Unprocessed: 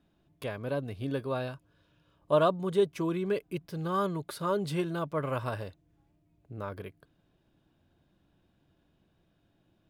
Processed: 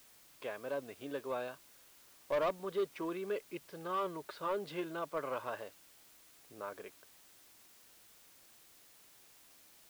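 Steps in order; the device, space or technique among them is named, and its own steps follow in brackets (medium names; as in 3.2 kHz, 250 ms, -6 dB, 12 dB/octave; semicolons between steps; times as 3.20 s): tape answering machine (band-pass 390–3300 Hz; saturation -24.5 dBFS, distortion -12 dB; wow and flutter; white noise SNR 20 dB); trim -3 dB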